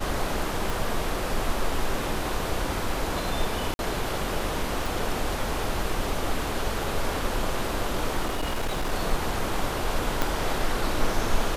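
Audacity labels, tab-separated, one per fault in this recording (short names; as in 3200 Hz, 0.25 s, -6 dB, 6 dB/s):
0.700000	0.700000	pop
3.740000	3.790000	gap 51 ms
4.860000	4.860000	pop
8.250000	8.930000	clipped -23 dBFS
10.220000	10.220000	pop -8 dBFS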